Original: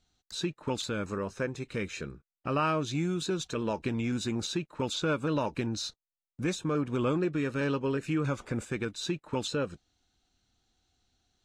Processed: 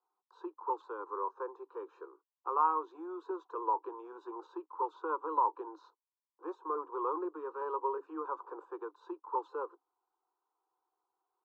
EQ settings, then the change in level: Chebyshev high-pass 280 Hz, order 10; resonant low-pass 1 kHz, resonance Q 7.7; static phaser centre 420 Hz, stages 8; -6.0 dB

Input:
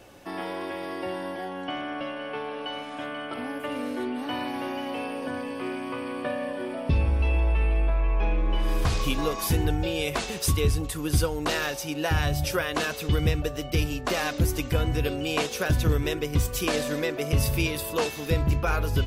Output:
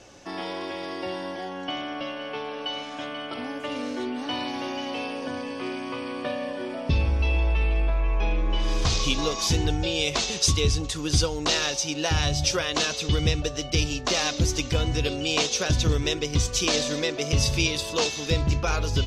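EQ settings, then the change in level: dynamic bell 3.7 kHz, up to +6 dB, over -48 dBFS, Q 1.6; resonant low-pass 6.2 kHz, resonance Q 3; dynamic bell 1.6 kHz, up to -4 dB, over -42 dBFS, Q 3.1; 0.0 dB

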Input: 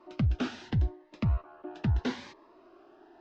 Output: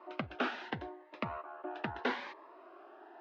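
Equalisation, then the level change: band-pass 540–2400 Hz; +6.0 dB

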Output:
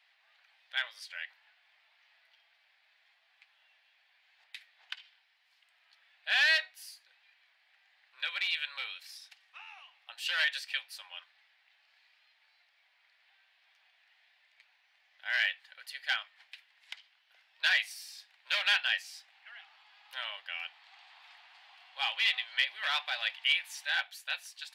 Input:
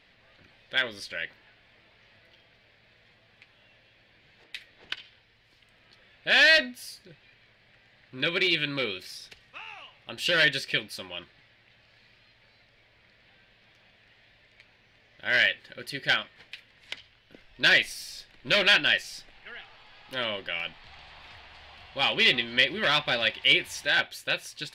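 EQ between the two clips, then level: elliptic high-pass 750 Hz, stop band 80 dB; treble shelf 8.5 kHz +4.5 dB; -7.0 dB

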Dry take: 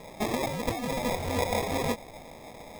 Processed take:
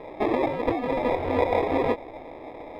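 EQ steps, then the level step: distance through air 450 m; resonant low shelf 250 Hz -6 dB, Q 3; +6.5 dB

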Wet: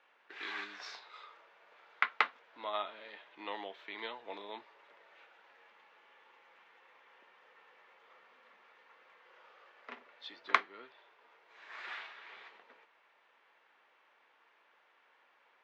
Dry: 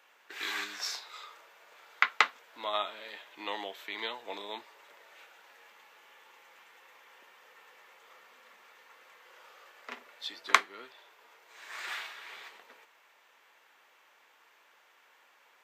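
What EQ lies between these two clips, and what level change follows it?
distance through air 230 m; -3.0 dB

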